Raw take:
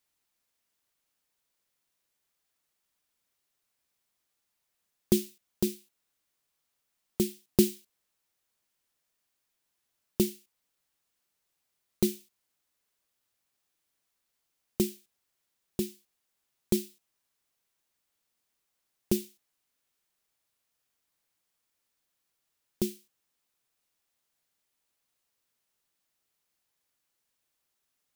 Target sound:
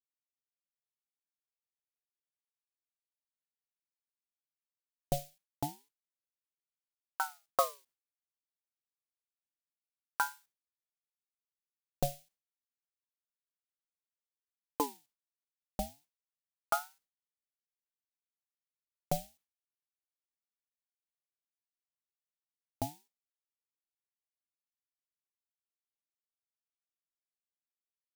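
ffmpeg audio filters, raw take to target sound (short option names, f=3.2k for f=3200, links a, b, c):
-af "dynaudnorm=f=960:g=13:m=5dB,agate=range=-33dB:threshold=-49dB:ratio=3:detection=peak,aeval=exprs='val(0)*sin(2*PI*780*n/s+780*0.55/0.29*sin(2*PI*0.29*n/s))':c=same,volume=-7dB"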